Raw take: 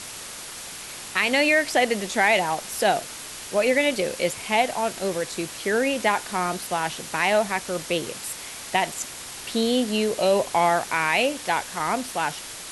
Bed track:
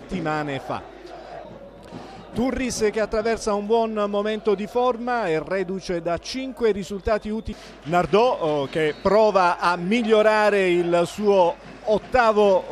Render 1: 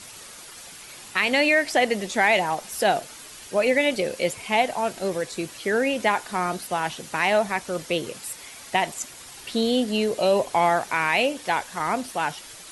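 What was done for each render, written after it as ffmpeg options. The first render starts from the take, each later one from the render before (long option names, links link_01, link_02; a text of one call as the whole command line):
ffmpeg -i in.wav -af "afftdn=noise_reduction=8:noise_floor=-38" out.wav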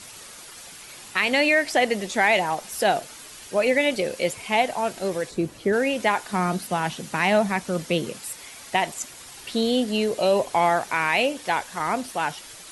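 ffmpeg -i in.wav -filter_complex "[0:a]asplit=3[link_01][link_02][link_03];[link_01]afade=type=out:start_time=5.29:duration=0.02[link_04];[link_02]tiltshelf=frequency=770:gain=8,afade=type=in:start_time=5.29:duration=0.02,afade=type=out:start_time=5.72:duration=0.02[link_05];[link_03]afade=type=in:start_time=5.72:duration=0.02[link_06];[link_04][link_05][link_06]amix=inputs=3:normalize=0,asettb=1/sr,asplit=3[link_07][link_08][link_09];[link_07]atrim=end=6.334[link_10];[link_08]atrim=start=6.33:end=8.16,asetpts=PTS-STARTPTS,afade=type=in:duration=0.004:curve=qsin,afade=type=out:start_time=1.826:duration=0.004:curve=qsin,equalizer=frequency=190:width=1.5:gain=8.5[link_11];[link_09]atrim=start=8.156[link_12];[link_10][link_11]acrossfade=duration=0.004:curve1=hsin:curve2=qsin[link_13];[link_13][link_12]acrossfade=duration=0.004:curve1=qsin:curve2=hsin" out.wav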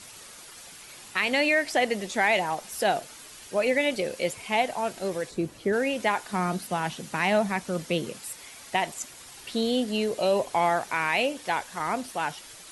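ffmpeg -i in.wav -af "volume=-3.5dB" out.wav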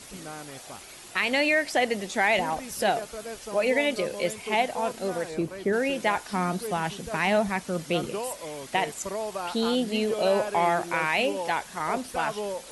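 ffmpeg -i in.wav -i bed.wav -filter_complex "[1:a]volume=-15.5dB[link_01];[0:a][link_01]amix=inputs=2:normalize=0" out.wav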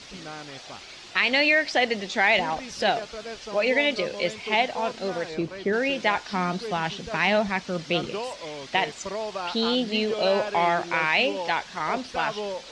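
ffmpeg -i in.wav -af "lowpass=frequency=5100:width=0.5412,lowpass=frequency=5100:width=1.3066,highshelf=frequency=2500:gain=9" out.wav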